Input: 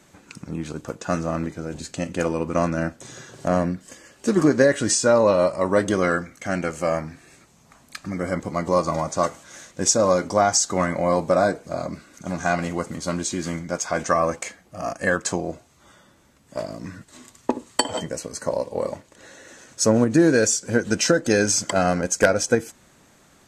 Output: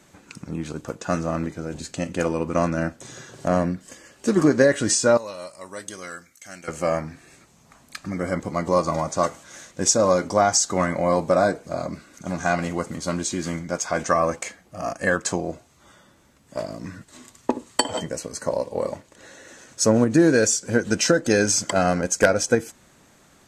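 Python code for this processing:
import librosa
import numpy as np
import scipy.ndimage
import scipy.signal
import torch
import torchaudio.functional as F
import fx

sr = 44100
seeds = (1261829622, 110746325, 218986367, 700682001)

y = fx.pre_emphasis(x, sr, coefficient=0.9, at=(5.17, 6.68))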